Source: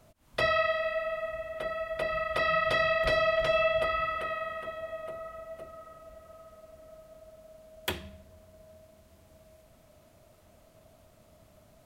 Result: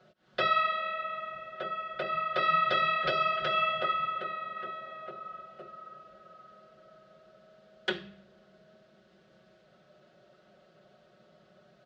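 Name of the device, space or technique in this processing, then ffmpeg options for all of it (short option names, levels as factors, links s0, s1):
kitchen radio: -filter_complex "[0:a]highpass=160,equalizer=f=260:t=q:w=4:g=-6,equalizer=f=440:t=q:w=4:g=6,equalizer=f=970:t=q:w=4:g=-9,equalizer=f=1500:t=q:w=4:g=7,equalizer=f=2300:t=q:w=4:g=-6,lowpass=f=4400:w=0.5412,lowpass=f=4400:w=1.3066,highshelf=f=7000:g=5.5,aecho=1:1:5.4:0.88,asettb=1/sr,asplit=3[s0][s1][s2];[s0]atrim=end=3.934[s3];[s1]atrim=start=3.93:end=4.57,asetpts=PTS-STARTPTS,afade=t=in:d=0.004:c=qsin,afade=t=out:st=0.636:d=0.004:c=qsin,equalizer=f=1600:t=o:w=2:g=-4.5[s4];[s2]atrim=start=4.566[s5];[s3][s4]acrossfade=d=0.004:c1=hsin:c2=qsin[s6];[s6][s5]acrossfade=d=0.004:c1=qsin:c2=hsin,volume=0.841"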